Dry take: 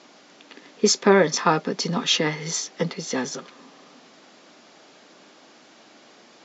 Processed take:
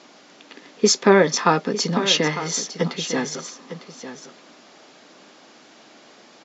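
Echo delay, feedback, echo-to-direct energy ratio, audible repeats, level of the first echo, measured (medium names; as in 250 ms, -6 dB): 903 ms, no regular repeats, -12.0 dB, 1, -12.0 dB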